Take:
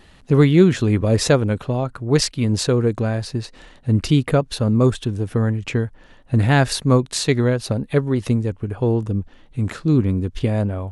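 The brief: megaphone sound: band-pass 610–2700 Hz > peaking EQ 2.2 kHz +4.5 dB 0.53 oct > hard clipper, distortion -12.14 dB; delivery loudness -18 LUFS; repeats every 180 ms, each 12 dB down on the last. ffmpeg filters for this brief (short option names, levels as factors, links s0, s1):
-af "highpass=610,lowpass=2700,equalizer=f=2200:t=o:w=0.53:g=4.5,aecho=1:1:180|360|540:0.251|0.0628|0.0157,asoftclip=type=hard:threshold=0.141,volume=3.76"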